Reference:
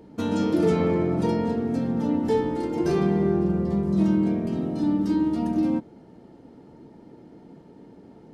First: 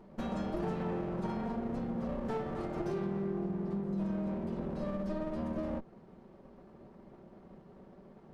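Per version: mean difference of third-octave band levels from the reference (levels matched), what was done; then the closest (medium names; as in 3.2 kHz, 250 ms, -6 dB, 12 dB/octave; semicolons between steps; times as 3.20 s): 3.5 dB: comb filter that takes the minimum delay 5.2 ms; treble shelf 3 kHz -8 dB; compression 3:1, threshold -29 dBFS, peak gain reduction 8.5 dB; trim -5 dB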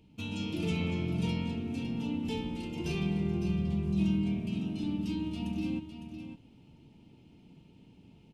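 5.5 dB: FFT filter 110 Hz 0 dB, 500 Hz -18 dB, 890 Hz -13 dB, 1.8 kHz -16 dB, 2.6 kHz +9 dB, 4.4 kHz -4 dB; level rider gain up to 3.5 dB; on a send: delay 557 ms -9 dB; on the sum: trim -4.5 dB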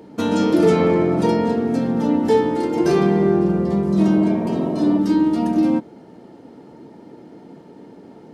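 1.5 dB: high-pass 220 Hz 6 dB/octave; spectral replace 4.06–4.96 s, 350–1100 Hz before; trim +8 dB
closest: third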